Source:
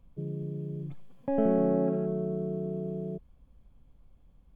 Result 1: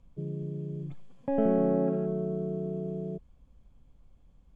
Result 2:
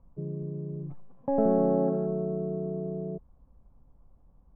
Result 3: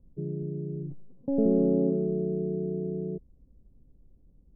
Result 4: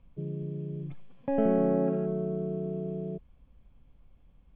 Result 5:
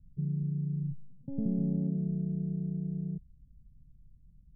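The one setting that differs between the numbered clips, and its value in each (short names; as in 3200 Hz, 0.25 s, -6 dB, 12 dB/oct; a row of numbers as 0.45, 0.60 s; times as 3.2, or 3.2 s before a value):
synth low-pass, frequency: 7400, 1000, 380, 2800, 150 Hz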